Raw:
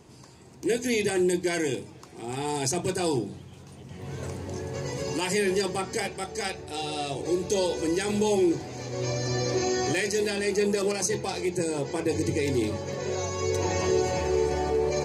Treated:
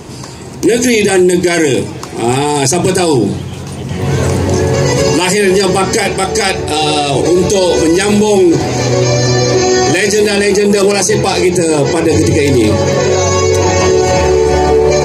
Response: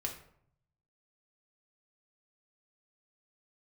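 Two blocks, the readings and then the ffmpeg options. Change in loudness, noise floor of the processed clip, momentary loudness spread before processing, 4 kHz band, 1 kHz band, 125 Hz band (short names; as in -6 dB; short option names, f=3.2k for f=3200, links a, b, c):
+17.0 dB, -25 dBFS, 10 LU, +17.5 dB, +18.0 dB, +19.0 dB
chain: -af "alimiter=level_in=24.5dB:limit=-1dB:release=50:level=0:latency=1,volume=-1dB"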